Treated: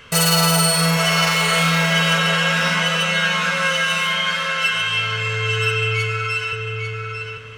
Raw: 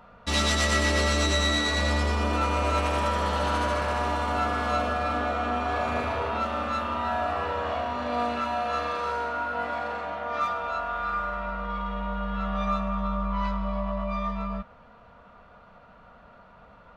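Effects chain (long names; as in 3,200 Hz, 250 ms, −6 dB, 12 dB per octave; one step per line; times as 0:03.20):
parametric band 150 Hz −12 dB 0.39 octaves
change of speed 2.24×
on a send: feedback echo with a low-pass in the loop 847 ms, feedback 26%, low-pass 4,900 Hz, level −5.5 dB
on the sum: level +8 dB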